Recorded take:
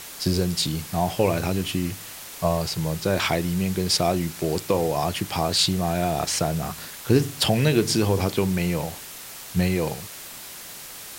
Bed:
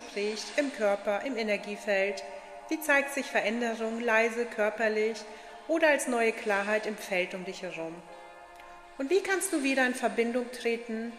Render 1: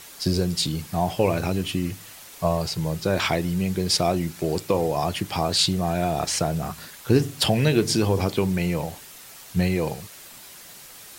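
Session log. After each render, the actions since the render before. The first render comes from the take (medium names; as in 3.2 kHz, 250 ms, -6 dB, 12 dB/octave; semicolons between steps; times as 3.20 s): noise reduction 6 dB, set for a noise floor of -40 dBFS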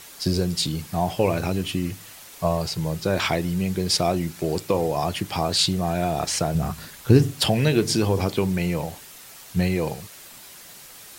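6.55–7.33 s: bass shelf 190 Hz +8.5 dB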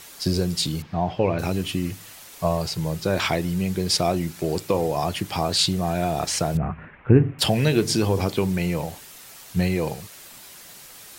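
0.82–1.39 s: distance through air 230 m; 6.57–7.39 s: steep low-pass 2.5 kHz 48 dB/octave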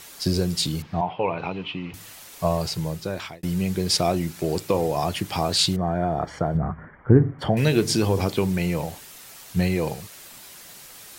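1.01–1.94 s: cabinet simulation 200–3200 Hz, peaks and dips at 230 Hz -9 dB, 350 Hz -7 dB, 600 Hz -5 dB, 940 Hz +7 dB, 1.7 kHz -8 dB, 2.5 kHz +3 dB; 2.74–3.43 s: fade out; 5.76–7.57 s: Savitzky-Golay filter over 41 samples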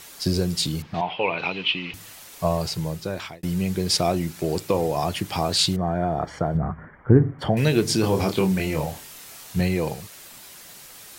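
0.94–1.94 s: frequency weighting D; 8.01–9.61 s: doubling 26 ms -3.5 dB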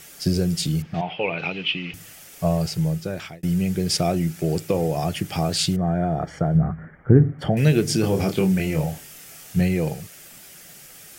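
graphic EQ with 31 bands 160 Hz +7 dB, 1 kHz -11 dB, 4 kHz -7 dB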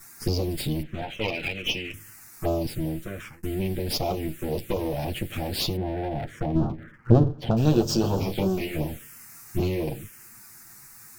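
comb filter that takes the minimum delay 8.7 ms; touch-sensitive phaser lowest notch 500 Hz, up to 2.1 kHz, full sweep at -19 dBFS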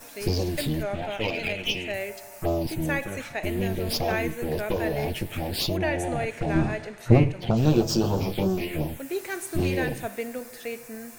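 add bed -4.5 dB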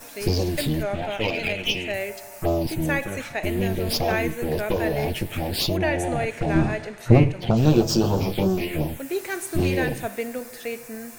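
trim +3 dB; peak limiter -1 dBFS, peak gain reduction 1.5 dB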